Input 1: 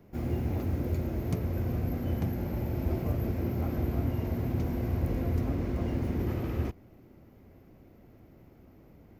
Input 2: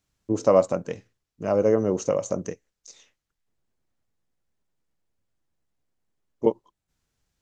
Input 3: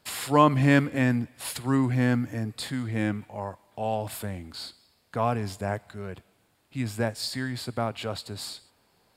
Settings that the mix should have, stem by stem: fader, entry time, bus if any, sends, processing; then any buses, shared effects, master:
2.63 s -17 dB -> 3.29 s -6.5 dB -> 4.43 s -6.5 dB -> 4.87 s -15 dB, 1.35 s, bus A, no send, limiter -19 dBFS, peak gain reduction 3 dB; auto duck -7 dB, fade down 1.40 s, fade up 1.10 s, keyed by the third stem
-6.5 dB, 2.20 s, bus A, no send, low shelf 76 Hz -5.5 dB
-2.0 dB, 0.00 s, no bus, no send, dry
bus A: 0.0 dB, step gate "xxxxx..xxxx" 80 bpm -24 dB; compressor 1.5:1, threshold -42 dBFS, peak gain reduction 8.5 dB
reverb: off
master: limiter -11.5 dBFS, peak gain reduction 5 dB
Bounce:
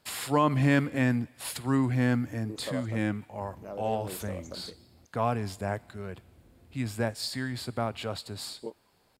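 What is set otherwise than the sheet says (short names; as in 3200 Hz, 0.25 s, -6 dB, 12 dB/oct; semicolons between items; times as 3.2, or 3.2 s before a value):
stem 1 -17.0 dB -> -23.5 dB; stem 2 -6.5 dB -> -13.5 dB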